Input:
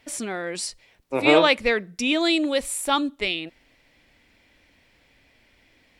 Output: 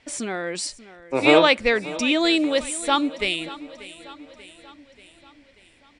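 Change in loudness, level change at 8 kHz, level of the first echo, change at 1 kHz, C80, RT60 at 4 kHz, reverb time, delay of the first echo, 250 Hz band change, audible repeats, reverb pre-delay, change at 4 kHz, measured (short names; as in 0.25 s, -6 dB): +1.5 dB, +0.5 dB, -17.5 dB, +1.5 dB, none, none, none, 0.586 s, +1.5 dB, 4, none, +1.5 dB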